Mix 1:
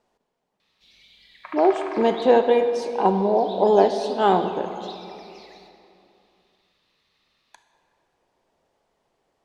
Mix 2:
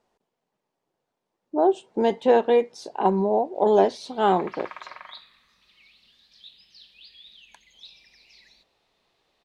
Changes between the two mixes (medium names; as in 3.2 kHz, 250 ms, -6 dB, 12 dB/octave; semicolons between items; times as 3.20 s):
background: entry +2.95 s; reverb: off